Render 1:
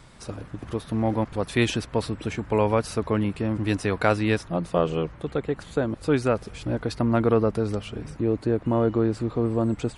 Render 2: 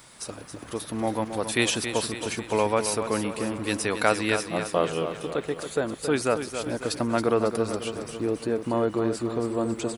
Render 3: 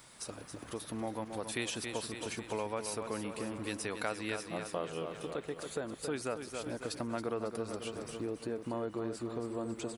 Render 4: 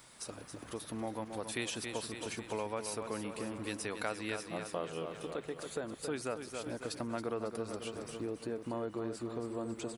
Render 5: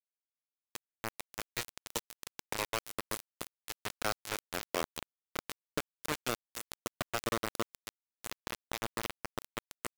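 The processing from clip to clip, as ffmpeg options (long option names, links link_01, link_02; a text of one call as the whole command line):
ffmpeg -i in.wav -filter_complex "[0:a]aemphasis=mode=production:type=bsi,asplit=2[link_01][link_02];[link_02]aecho=0:1:274|548|822|1096|1370|1644:0.355|0.192|0.103|0.0559|0.0302|0.0163[link_03];[link_01][link_03]amix=inputs=2:normalize=0" out.wav
ffmpeg -i in.wav -af "acompressor=threshold=-32dB:ratio=2,volume=-6dB" out.wav
ffmpeg -i in.wav -af "bandreject=frequency=47.15:width_type=h:width=4,bandreject=frequency=94.3:width_type=h:width=4,bandreject=frequency=141.45:width_type=h:width=4,bandreject=frequency=188.6:width_type=h:width=4,volume=-1dB" out.wav
ffmpeg -i in.wav -filter_complex "[0:a]highshelf=frequency=3400:gain=7,acrossover=split=190|450|1700[link_01][link_02][link_03][link_04];[link_04]alimiter=level_in=8.5dB:limit=-24dB:level=0:latency=1:release=14,volume=-8.5dB[link_05];[link_01][link_02][link_03][link_05]amix=inputs=4:normalize=0,acrusher=bits=4:mix=0:aa=0.000001,volume=2dB" out.wav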